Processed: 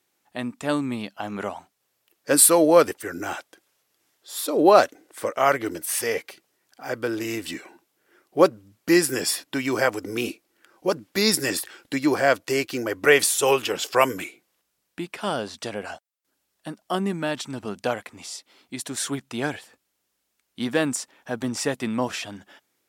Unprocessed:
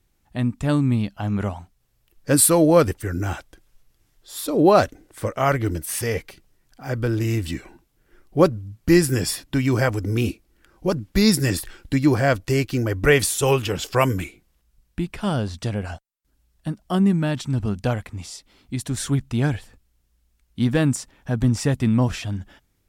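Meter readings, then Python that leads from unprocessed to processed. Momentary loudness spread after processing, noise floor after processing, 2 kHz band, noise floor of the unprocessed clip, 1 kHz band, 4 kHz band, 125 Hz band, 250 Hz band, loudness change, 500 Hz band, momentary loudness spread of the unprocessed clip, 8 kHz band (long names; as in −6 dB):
19 LU, −76 dBFS, +1.5 dB, −67 dBFS, +1.5 dB, +1.5 dB, −16.0 dB, −5.0 dB, −1.5 dB, 0.0 dB, 15 LU, +1.5 dB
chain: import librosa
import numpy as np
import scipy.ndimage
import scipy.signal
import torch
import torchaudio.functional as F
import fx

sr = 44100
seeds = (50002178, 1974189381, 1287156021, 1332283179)

y = scipy.signal.sosfilt(scipy.signal.butter(2, 370.0, 'highpass', fs=sr, output='sos'), x)
y = F.gain(torch.from_numpy(y), 1.5).numpy()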